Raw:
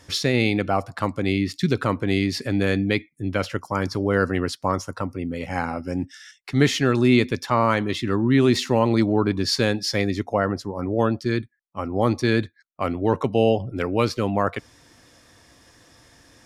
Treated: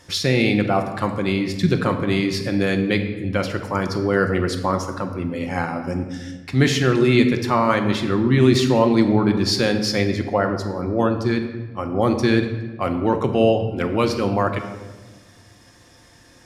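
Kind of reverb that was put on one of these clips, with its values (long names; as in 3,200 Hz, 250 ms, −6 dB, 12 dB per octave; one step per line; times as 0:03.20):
rectangular room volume 980 cubic metres, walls mixed, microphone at 0.9 metres
level +1 dB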